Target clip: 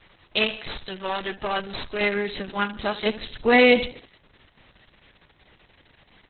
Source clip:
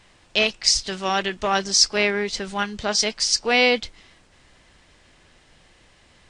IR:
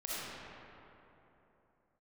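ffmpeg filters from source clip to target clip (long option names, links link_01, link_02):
-filter_complex "[0:a]asettb=1/sr,asplit=3[link_01][link_02][link_03];[link_01]atrim=end=0.584[link_04];[link_02]atrim=start=0.58:end=2.01,asetpts=PTS-STARTPTS,afade=type=in:duration=0.004:curve=qsin,afade=type=out:start_time=1.426:duration=0.004:curve=qsin,aeval=exprs='(tanh(6.31*val(0)+0.5)-tanh(0.5))/6.31':channel_layout=same[link_05];[link_03]atrim=start=2.006[link_06];[link_04][link_05]acrossfade=duration=0.004:curve1=hsin:curve2=qsin[link_07];[link_07][link_06]acrossfade=duration=0.004:curve1=qsin:curve2=hsin,asplit=3[link_08][link_09][link_10];[link_08]afade=type=out:start_time=3.05:duration=0.02[link_11];[link_09]lowshelf=frequency=480:gain=9.5,afade=type=in:start_time=3.05:duration=0.02,afade=type=out:start_time=3.84:duration=0.02[link_12];[link_10]afade=type=in:start_time=3.84:duration=0.02[link_13];[link_11][link_12][link_13]amix=inputs=3:normalize=0,aecho=1:1:75|150|225|300:0.188|0.081|0.0348|0.015" -ar 48000 -c:a libopus -b:a 6k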